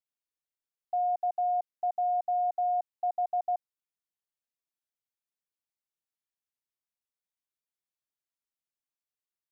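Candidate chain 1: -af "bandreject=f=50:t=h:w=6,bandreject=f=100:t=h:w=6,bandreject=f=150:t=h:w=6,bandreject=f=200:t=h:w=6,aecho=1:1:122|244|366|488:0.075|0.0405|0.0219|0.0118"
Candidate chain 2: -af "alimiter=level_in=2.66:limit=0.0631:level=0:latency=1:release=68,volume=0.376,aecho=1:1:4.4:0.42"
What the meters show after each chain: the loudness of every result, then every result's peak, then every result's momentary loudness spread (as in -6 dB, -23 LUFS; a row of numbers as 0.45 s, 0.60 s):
-31.0 LUFS, -36.5 LUFS; -24.0 dBFS, -30.5 dBFS; 5 LU, 5 LU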